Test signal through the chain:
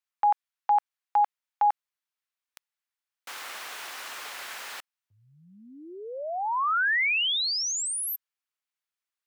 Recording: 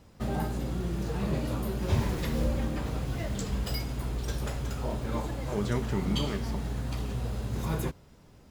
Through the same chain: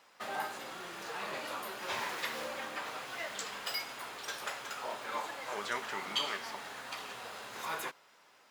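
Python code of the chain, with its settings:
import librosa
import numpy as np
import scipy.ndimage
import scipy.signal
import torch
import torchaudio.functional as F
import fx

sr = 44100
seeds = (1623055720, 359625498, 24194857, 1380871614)

y = scipy.signal.sosfilt(scipy.signal.butter(2, 1200.0, 'highpass', fs=sr, output='sos'), x)
y = fx.high_shelf(y, sr, hz=3400.0, db=-10.5)
y = y * 10.0 ** (8.0 / 20.0)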